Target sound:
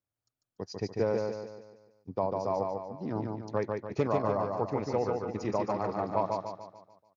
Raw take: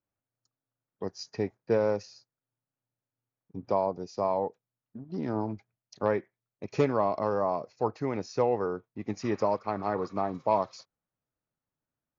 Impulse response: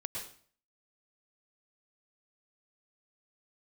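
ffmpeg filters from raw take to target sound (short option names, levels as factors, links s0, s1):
-af "equalizer=f=98:w=2.2:g=4.5,atempo=1.7,aecho=1:1:146|292|438|584|730|876:0.668|0.301|0.135|0.0609|0.0274|0.0123,volume=0.708"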